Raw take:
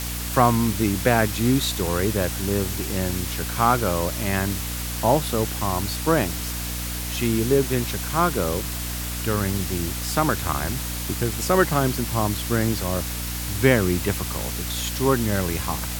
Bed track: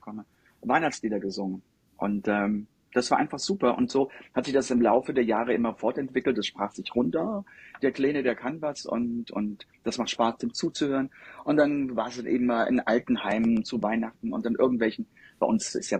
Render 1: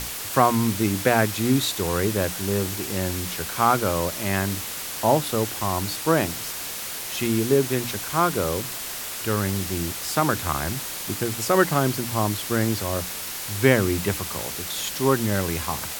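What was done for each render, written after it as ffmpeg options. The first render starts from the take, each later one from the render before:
-af "bandreject=f=60:t=h:w=6,bandreject=f=120:t=h:w=6,bandreject=f=180:t=h:w=6,bandreject=f=240:t=h:w=6,bandreject=f=300:t=h:w=6"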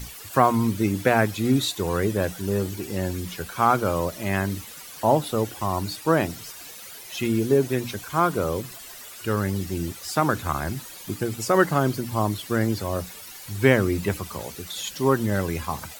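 -af "afftdn=nr=13:nf=-33"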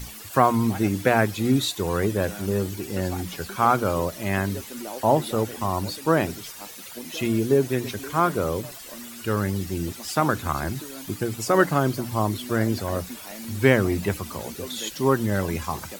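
-filter_complex "[1:a]volume=-14.5dB[a];[0:a][a]amix=inputs=2:normalize=0"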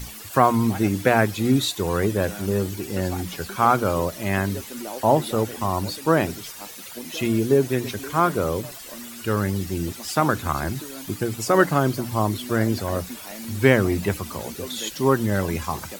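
-af "volume=1.5dB,alimiter=limit=-2dB:level=0:latency=1"

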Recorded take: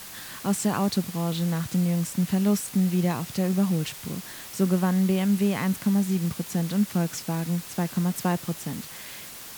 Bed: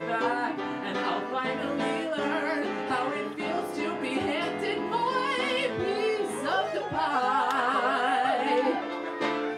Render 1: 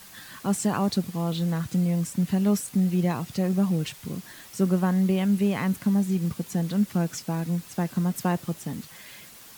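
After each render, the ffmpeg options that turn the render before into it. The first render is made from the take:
-af "afftdn=nr=7:nf=-41"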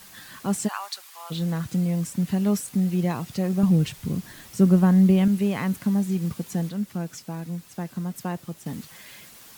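-filter_complex "[0:a]asplit=3[a][b][c];[a]afade=t=out:st=0.67:d=0.02[d];[b]highpass=f=920:w=0.5412,highpass=f=920:w=1.3066,afade=t=in:st=0.67:d=0.02,afade=t=out:st=1.3:d=0.02[e];[c]afade=t=in:st=1.3:d=0.02[f];[d][e][f]amix=inputs=3:normalize=0,asettb=1/sr,asplit=3[g][h][i];[g]atrim=end=3.634[j];[h]atrim=start=3.63:end=5.28,asetpts=PTS-STARTPTS,afade=t=in:d=0.004:c=qsin,afade=t=out:st=1.646:d=0.004:c=qsin,lowshelf=f=230:g=10.5[k];[i]atrim=start=5.276[l];[j][k]acrossfade=d=0.004:c1=hsin:c2=qsin[m];[m][l]acrossfade=d=0.004:c1=qsin:c2=hsin,asplit=3[n][o][p];[n]atrim=end=6.692[q];[o]atrim=start=6.688:end=8.662,asetpts=PTS-STARTPTS,volume=-5dB[r];[p]atrim=start=8.658[s];[q][r]acrossfade=d=0.004:c1=hsin:c2=hsin[t];[t][s]acrossfade=d=0.004:c1=hsin:c2=hsin"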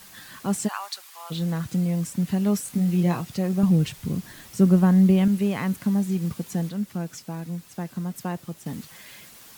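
-filter_complex "[0:a]asettb=1/sr,asplit=3[a][b][c];[a]atrim=end=2.634[d];[b]atrim=start=2.63:end=3.21,asetpts=PTS-STARTPTS,afade=t=in:d=0.004:c=qsin,afade=t=out:st=0.576:d=0.004:c=qsin,asplit=2[e][f];[f]adelay=23,volume=-5.5dB[g];[e][g]amix=inputs=2:normalize=0,atrim=end_sample=25578[h];[c]atrim=start=3.206[i];[d][h]acrossfade=d=0.004:c1=hsin:c2=qsin[j];[j][i]acrossfade=d=0.004:c1=qsin:c2=hsin,asettb=1/sr,asplit=3[k][l][m];[k]atrim=end=5.174[n];[l]atrim=start=5.17:end=5.78,asetpts=PTS-STARTPTS,afade=t=in:d=0.004:c=qsin,afade=t=out:st=0.606:d=0.004:c=qsin,aeval=exprs='sgn(val(0))*max(abs(val(0))-0.0015,0)':c=same[o];[m]atrim=start=5.776[p];[n][o]acrossfade=d=0.004:c1=hsin:c2=qsin[q];[q][p]acrossfade=d=0.004:c1=qsin:c2=hsin"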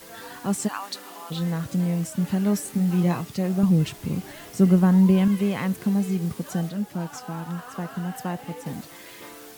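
-filter_complex "[1:a]volume=-15.5dB[a];[0:a][a]amix=inputs=2:normalize=0"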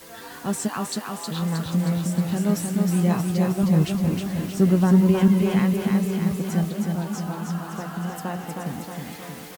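-filter_complex "[0:a]asplit=2[a][b];[b]adelay=13,volume=-11.5dB[c];[a][c]amix=inputs=2:normalize=0,aecho=1:1:314|628|942|1256|1570|1884|2198|2512:0.631|0.372|0.22|0.13|0.0765|0.0451|0.0266|0.0157"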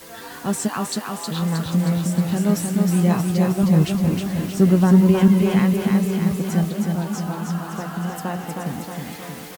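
-af "volume=3dB"

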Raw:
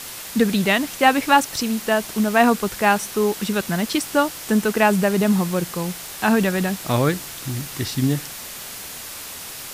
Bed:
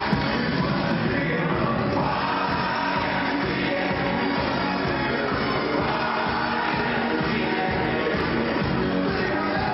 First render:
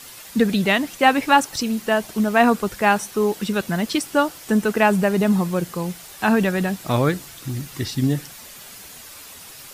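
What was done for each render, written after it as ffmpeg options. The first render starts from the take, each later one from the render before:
-af "afftdn=nr=8:nf=-35"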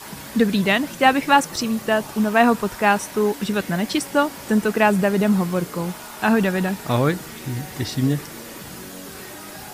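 -filter_complex "[1:a]volume=-15dB[a];[0:a][a]amix=inputs=2:normalize=0"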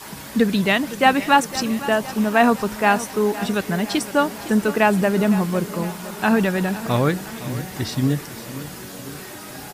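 -af "aecho=1:1:510|1020|1530|2040|2550|3060:0.168|0.099|0.0584|0.0345|0.0203|0.012"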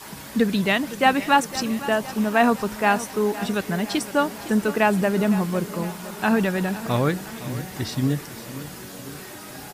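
-af "volume=-2.5dB"

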